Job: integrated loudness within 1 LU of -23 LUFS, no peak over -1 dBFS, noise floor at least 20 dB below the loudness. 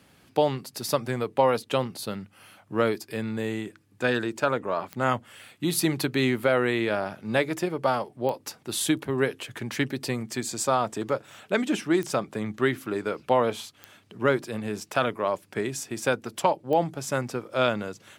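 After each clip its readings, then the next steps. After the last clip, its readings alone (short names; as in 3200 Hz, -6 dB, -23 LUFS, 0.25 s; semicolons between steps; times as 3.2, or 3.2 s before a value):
clicks 5; loudness -27.5 LUFS; peak -8.5 dBFS; loudness target -23.0 LUFS
-> de-click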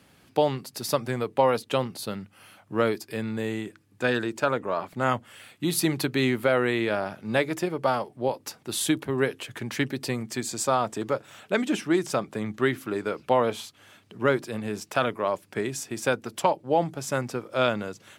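clicks 0; loudness -27.5 LUFS; peak -8.5 dBFS; loudness target -23.0 LUFS
-> gain +4.5 dB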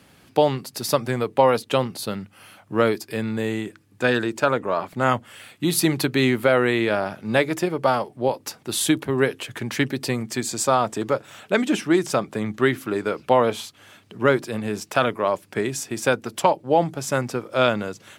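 loudness -23.0 LUFS; peak -4.0 dBFS; noise floor -55 dBFS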